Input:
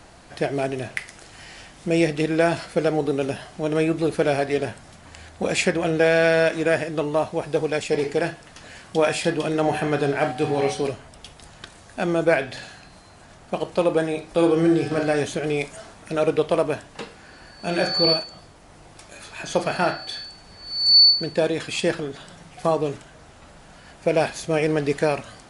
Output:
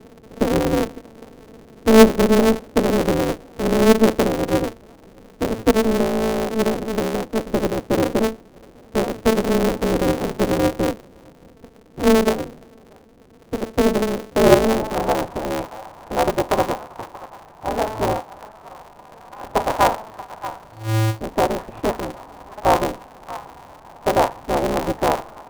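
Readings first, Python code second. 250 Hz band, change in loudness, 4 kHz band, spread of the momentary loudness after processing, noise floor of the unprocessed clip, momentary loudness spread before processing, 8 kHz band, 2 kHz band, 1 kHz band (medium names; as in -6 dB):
+5.0 dB, +2.0 dB, -9.0 dB, 17 LU, -48 dBFS, 16 LU, +4.0 dB, -1.5 dB, +6.0 dB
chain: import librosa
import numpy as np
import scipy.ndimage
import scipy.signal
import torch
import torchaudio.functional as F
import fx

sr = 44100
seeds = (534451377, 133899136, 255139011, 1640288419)

y = fx.tracing_dist(x, sr, depth_ms=0.073)
y = fx.peak_eq(y, sr, hz=8000.0, db=-14.5, octaves=2.3)
y = fx.rider(y, sr, range_db=10, speed_s=2.0)
y = np.clip(10.0 ** (13.5 / 20.0) * y, -1.0, 1.0) / 10.0 ** (13.5 / 20.0)
y = fx.echo_stepped(y, sr, ms=630, hz=1200.0, octaves=1.4, feedback_pct=70, wet_db=-10.0)
y = fx.filter_sweep_lowpass(y, sr, from_hz=360.0, to_hz=870.0, start_s=14.27, end_s=14.92, q=7.1)
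y = y * np.sign(np.sin(2.0 * np.pi * 110.0 * np.arange(len(y)) / sr))
y = y * librosa.db_to_amplitude(-2.5)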